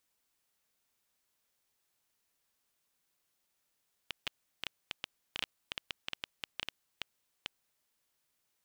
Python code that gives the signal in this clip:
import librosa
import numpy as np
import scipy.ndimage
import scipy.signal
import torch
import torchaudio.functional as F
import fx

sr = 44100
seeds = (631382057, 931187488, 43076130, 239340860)

y = fx.geiger_clicks(sr, seeds[0], length_s=3.71, per_s=6.6, level_db=-18.0)